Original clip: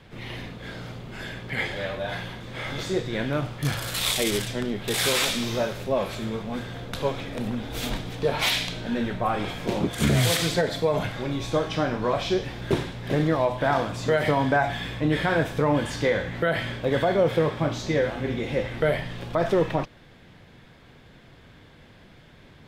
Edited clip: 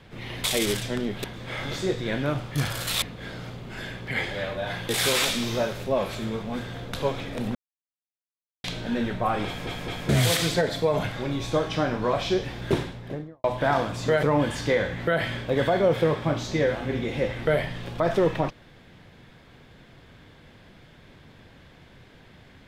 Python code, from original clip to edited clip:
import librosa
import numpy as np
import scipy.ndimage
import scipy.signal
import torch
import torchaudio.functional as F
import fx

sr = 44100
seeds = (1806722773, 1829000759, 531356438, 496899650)

y = fx.studio_fade_out(x, sr, start_s=12.72, length_s=0.72)
y = fx.edit(y, sr, fx.swap(start_s=0.44, length_s=1.87, other_s=4.09, other_length_s=0.8),
    fx.silence(start_s=7.55, length_s=1.09),
    fx.stutter_over(start_s=9.46, slice_s=0.21, count=3),
    fx.cut(start_s=14.23, length_s=1.35), tone=tone)